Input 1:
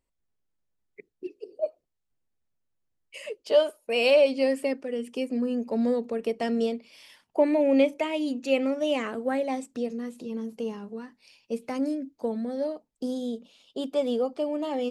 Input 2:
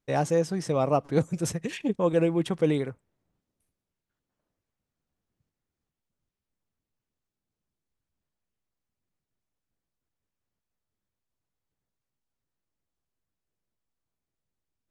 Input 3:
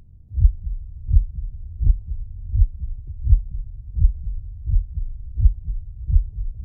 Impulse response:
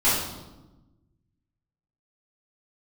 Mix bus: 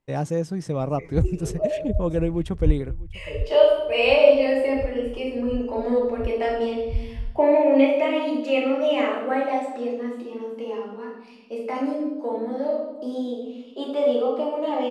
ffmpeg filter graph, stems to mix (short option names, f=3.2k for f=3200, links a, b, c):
-filter_complex "[0:a]acrossover=split=300 3400:gain=0.0708 1 0.224[a][b][c];[a][b][c]amix=inputs=3:normalize=0,volume=-0.5dB,asplit=3[d][e][f];[e]volume=-10.5dB[g];[1:a]lowshelf=f=320:g=9,volume=-4.5dB,asplit=2[h][i];[i]volume=-22.5dB[j];[2:a]adelay=800,volume=-3dB[k];[f]apad=whole_len=328438[l];[k][l]sidechaincompress=threshold=-46dB:ratio=4:attack=16:release=327[m];[3:a]atrim=start_sample=2205[n];[g][n]afir=irnorm=-1:irlink=0[o];[j]aecho=0:1:648:1[p];[d][h][m][o][p]amix=inputs=5:normalize=0"